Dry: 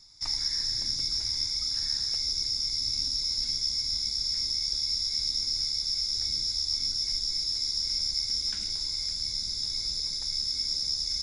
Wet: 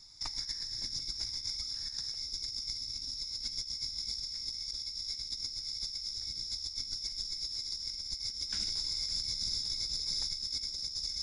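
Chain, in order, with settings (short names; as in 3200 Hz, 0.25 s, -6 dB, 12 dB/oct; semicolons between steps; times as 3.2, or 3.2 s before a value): negative-ratio compressor -33 dBFS, ratio -0.5; gain -4 dB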